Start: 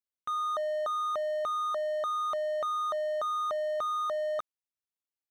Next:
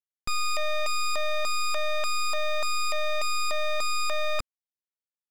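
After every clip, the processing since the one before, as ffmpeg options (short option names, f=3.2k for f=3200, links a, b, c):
-af "acrusher=bits=9:mode=log:mix=0:aa=0.000001,equalizer=f=260:w=3.1:g=5.5,aeval=exprs='0.0531*(cos(1*acos(clip(val(0)/0.0531,-1,1)))-cos(1*PI/2))+0.00841*(cos(3*acos(clip(val(0)/0.0531,-1,1)))-cos(3*PI/2))+0.0237*(cos(4*acos(clip(val(0)/0.0531,-1,1)))-cos(4*PI/2))+0.00299*(cos(7*acos(clip(val(0)/0.0531,-1,1)))-cos(7*PI/2))+0.0237*(cos(8*acos(clip(val(0)/0.0531,-1,1)))-cos(8*PI/2))':c=same"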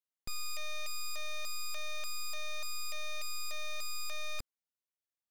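-af "asoftclip=type=hard:threshold=-29dB,volume=-3.5dB"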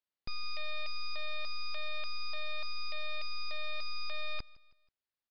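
-af "aecho=1:1:161|322|483:0.0708|0.0319|0.0143,aresample=11025,aresample=44100,volume=1.5dB"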